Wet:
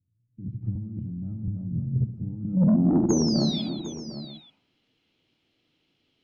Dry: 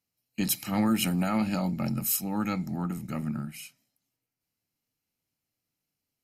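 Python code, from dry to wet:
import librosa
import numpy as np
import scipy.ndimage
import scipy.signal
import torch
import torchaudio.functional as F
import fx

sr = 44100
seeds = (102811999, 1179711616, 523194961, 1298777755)

p1 = fx.peak_eq(x, sr, hz=350.0, db=10.5, octaves=1.1)
p2 = fx.over_compress(p1, sr, threshold_db=-31.0, ratio=-1.0)
p3 = fx.filter_sweep_lowpass(p2, sr, from_hz=110.0, to_hz=3300.0, start_s=2.34, end_s=4.46, q=4.8)
p4 = 10.0 ** (-19.5 / 20.0) * np.tanh(p3 / 10.0 ** (-19.5 / 20.0))
p5 = fx.spec_paint(p4, sr, seeds[0], shape='fall', start_s=3.09, length_s=0.53, low_hz=3300.0, high_hz=6700.0, level_db=-38.0)
p6 = p5 + fx.echo_multitap(p5, sr, ms=(69, 179, 311, 754, 884), db=(-14.5, -13.5, -14.0, -13.5, -20.0), dry=0)
p7 = fx.band_squash(p6, sr, depth_pct=100, at=(0.75, 1.48))
y = F.gain(torch.from_numpy(p7), 4.5).numpy()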